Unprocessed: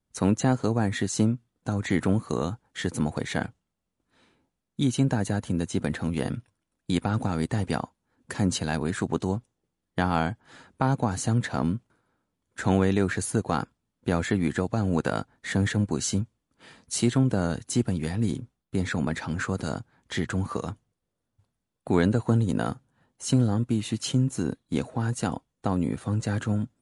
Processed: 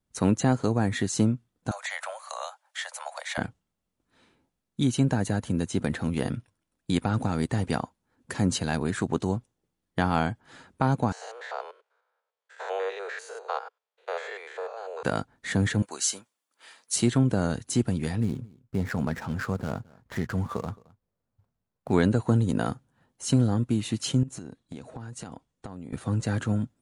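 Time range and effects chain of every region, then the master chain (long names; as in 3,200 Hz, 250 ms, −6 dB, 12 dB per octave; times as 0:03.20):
0:01.71–0:03.38: Butterworth high-pass 560 Hz 96 dB per octave + multiband upward and downward compressor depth 40%
0:11.12–0:15.03: spectrum averaged block by block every 100 ms + Butterworth high-pass 440 Hz 72 dB per octave + high-frequency loss of the air 110 metres
0:15.82–0:16.96: high-pass filter 730 Hz + high-shelf EQ 7,400 Hz +7.5 dB
0:18.20–0:21.93: running median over 15 samples + parametric band 310 Hz −6.5 dB 0.42 octaves + single-tap delay 218 ms −24 dB
0:24.23–0:25.93: Butterworth low-pass 9,900 Hz + downward compressor 10 to 1, threshold −35 dBFS
whole clip: no processing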